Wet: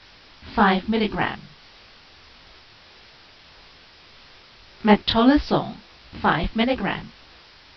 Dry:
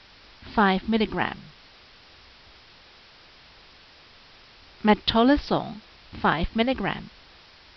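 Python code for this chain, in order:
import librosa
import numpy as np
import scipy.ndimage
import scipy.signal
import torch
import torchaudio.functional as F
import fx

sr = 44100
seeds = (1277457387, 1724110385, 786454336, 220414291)

y = fx.detune_double(x, sr, cents=57)
y = y * librosa.db_to_amplitude(6.0)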